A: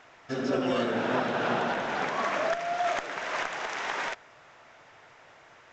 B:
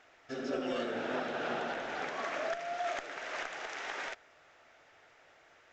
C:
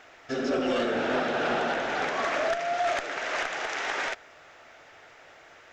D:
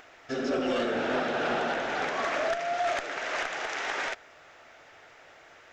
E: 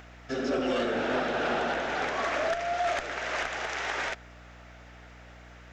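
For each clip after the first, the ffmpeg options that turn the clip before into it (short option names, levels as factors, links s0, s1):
-af "equalizer=f=125:t=o:w=0.33:g=-11,equalizer=f=200:t=o:w=0.33:g=-9,equalizer=f=1000:t=o:w=0.33:g=-7,volume=0.473"
-af "aeval=exprs='0.0944*sin(PI/2*2*val(0)/0.0944)':c=same"
-af "acompressor=mode=upward:threshold=0.00316:ratio=2.5,volume=0.841"
-af "aeval=exprs='val(0)+0.00316*(sin(2*PI*60*n/s)+sin(2*PI*2*60*n/s)/2+sin(2*PI*3*60*n/s)/3+sin(2*PI*4*60*n/s)/4+sin(2*PI*5*60*n/s)/5)':c=same"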